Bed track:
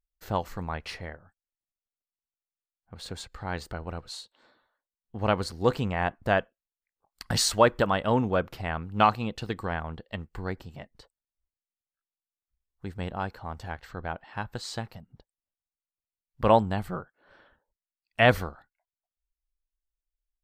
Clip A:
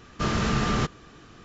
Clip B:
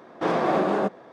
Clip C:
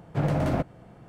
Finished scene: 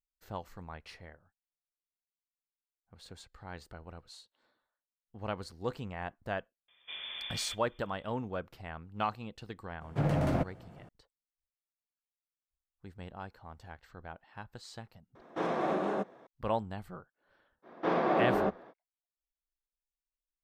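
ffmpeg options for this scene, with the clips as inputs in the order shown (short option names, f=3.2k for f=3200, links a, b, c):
-filter_complex "[2:a]asplit=2[a][b];[0:a]volume=-12dB[c];[1:a]lowpass=f=3.1k:t=q:w=0.5098,lowpass=f=3.1k:t=q:w=0.6013,lowpass=f=3.1k:t=q:w=0.9,lowpass=f=3.1k:t=q:w=2.563,afreqshift=-3600[d];[a]bandreject=f=4.7k:w=9.3[e];[b]highpass=120,lowpass=3.8k[f];[d]atrim=end=1.44,asetpts=PTS-STARTPTS,volume=-17.5dB,afade=t=in:d=0.004:c=hsin,afade=t=out:st=1.436:d=0.004:c=hsin,adelay=6680[g];[3:a]atrim=end=1.08,asetpts=PTS-STARTPTS,volume=-4dB,afade=t=in:d=0.004:c=hsin,afade=t=out:st=1.076:d=0.004:c=hsin,adelay=9810[h];[e]atrim=end=1.12,asetpts=PTS-STARTPTS,volume=-9dB,afade=t=in:d=0.004:c=hsin,afade=t=out:st=1.116:d=0.004:c=hsin,adelay=15150[i];[f]atrim=end=1.12,asetpts=PTS-STARTPTS,volume=-5.5dB,afade=t=in:d=0.05,afade=t=out:st=1.07:d=0.05,adelay=17620[j];[c][g][h][i][j]amix=inputs=5:normalize=0"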